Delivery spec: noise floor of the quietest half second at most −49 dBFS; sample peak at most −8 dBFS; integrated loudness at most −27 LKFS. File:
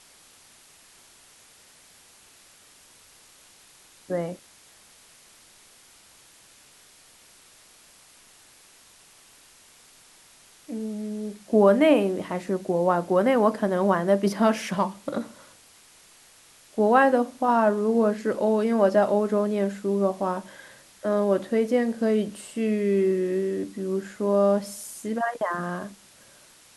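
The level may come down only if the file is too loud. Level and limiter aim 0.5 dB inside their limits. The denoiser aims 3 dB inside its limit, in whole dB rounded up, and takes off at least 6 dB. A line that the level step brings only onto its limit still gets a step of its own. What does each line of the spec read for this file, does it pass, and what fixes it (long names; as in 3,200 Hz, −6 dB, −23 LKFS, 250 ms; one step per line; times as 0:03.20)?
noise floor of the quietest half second −54 dBFS: in spec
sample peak −6.0 dBFS: out of spec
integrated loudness −24.0 LKFS: out of spec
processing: level −3.5 dB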